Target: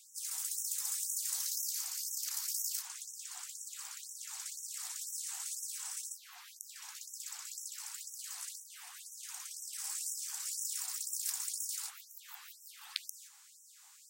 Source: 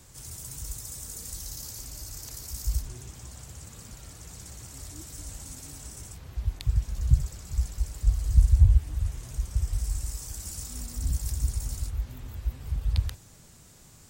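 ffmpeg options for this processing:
ffmpeg -i in.wav -filter_complex "[0:a]asettb=1/sr,asplit=3[link_01][link_02][link_03];[link_01]atrim=end=10.134[link_04];[link_02]atrim=start=10.13:end=10.62,asetpts=PTS-STARTPTS,afade=type=in:duration=0.004:curve=qsin,afade=type=out:start_time=0.486:duration=0.004:curve=qsin,highshelf=frequency=6100:gain=-5[link_05];[link_03]atrim=start=10.616[link_06];[link_04][link_05]acrossfade=duration=0.004:curve1=hsin:curve2=qsin[link_07];[link_07][link_06]acrossfade=duration=0.004:curve1=qsin:curve2=hsin,agate=range=-6dB:threshold=-48dB:ratio=16:detection=peak,afftfilt=real='re*gte(b*sr/1024,690*pow(5500/690,0.5+0.5*sin(2*PI*2*pts/sr)))':imag='im*gte(b*sr/1024,690*pow(5500/690,0.5+0.5*sin(2*PI*2*pts/sr)))':win_size=1024:overlap=0.75,volume=3.5dB" out.wav

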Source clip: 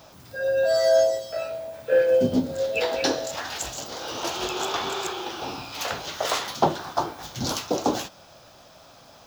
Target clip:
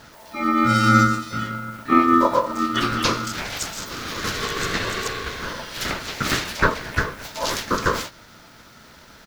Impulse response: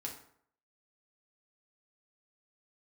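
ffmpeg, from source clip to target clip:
-filter_complex "[0:a]asplit=4[link_01][link_02][link_03][link_04];[link_02]asetrate=29433,aresample=44100,atempo=1.49831,volume=-18dB[link_05];[link_03]asetrate=37084,aresample=44100,atempo=1.18921,volume=0dB[link_06];[link_04]asetrate=88200,aresample=44100,atempo=0.5,volume=-13dB[link_07];[link_01][link_05][link_06][link_07]amix=inputs=4:normalize=0,aeval=exprs='val(0)*sin(2*PI*770*n/s)':channel_layout=same,volume=3dB"

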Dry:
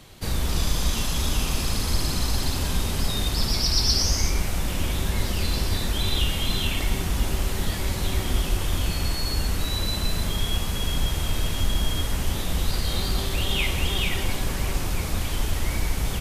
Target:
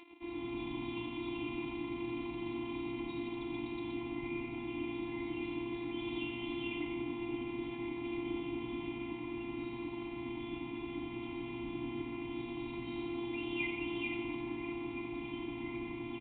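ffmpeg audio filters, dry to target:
ffmpeg -i in.wav -filter_complex "[0:a]afftfilt=real='hypot(re,im)*cos(PI*b)':imag='0':win_size=512:overlap=0.75,asplit=4[link_01][link_02][link_03][link_04];[link_02]adelay=89,afreqshift=120,volume=-15dB[link_05];[link_03]adelay=178,afreqshift=240,volume=-23.9dB[link_06];[link_04]adelay=267,afreqshift=360,volume=-32.7dB[link_07];[link_01][link_05][link_06][link_07]amix=inputs=4:normalize=0,aresample=8000,aeval=exprs='sgn(val(0))*max(abs(val(0))-0.00299,0)':channel_layout=same,aresample=44100,asplit=3[link_08][link_09][link_10];[link_08]bandpass=frequency=300:width_type=q:width=8,volume=0dB[link_11];[link_09]bandpass=frequency=870:width_type=q:width=8,volume=-6dB[link_12];[link_10]bandpass=frequency=2240:width_type=q:width=8,volume=-9dB[link_13];[link_11][link_12][link_13]amix=inputs=3:normalize=0,acompressor=mode=upward:threshold=-55dB:ratio=2.5,volume=7.5dB" out.wav

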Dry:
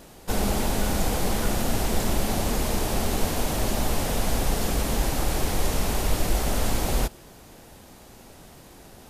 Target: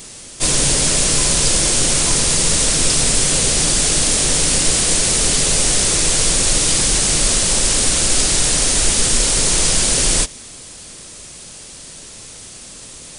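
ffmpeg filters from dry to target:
ffmpeg -i in.wav -af "asetrate=30429,aresample=44100,crystalizer=i=6:c=0,volume=3.5dB" out.wav

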